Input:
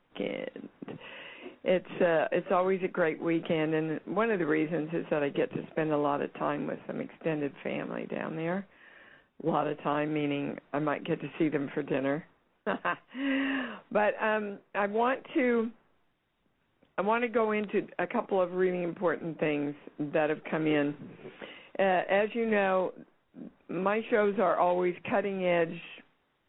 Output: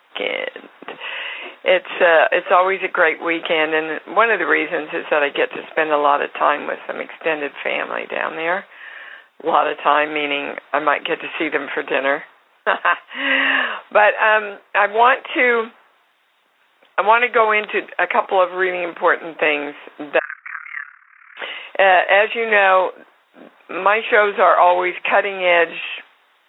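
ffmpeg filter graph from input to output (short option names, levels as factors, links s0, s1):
-filter_complex "[0:a]asettb=1/sr,asplit=3[s0][s1][s2];[s0]atrim=end=20.194[s3];[s1]atrim=start=20.19:end=21.37,asetpts=PTS-STARTPTS,afade=t=in:d=0.004:c=qsin,afade=t=out:st=1.176:d=0.004:c=qsin,acompressor=threshold=0.0224:ratio=2:attack=3.2:release=140:knee=1:detection=peak,asuperpass=centerf=1600:order=8:qfactor=1.6,tremolo=f=36:d=0.857[s4];[s2]atrim=start=21.366[s5];[s3][s4]acrossfade=d=0.004:c1=hsin:c2=qsin[s6];[s6][s5]acrossfade=d=0.004:c1=qsin:c2=hsin,highpass=790,alimiter=level_in=10:limit=0.891:release=50:level=0:latency=1,volume=0.891"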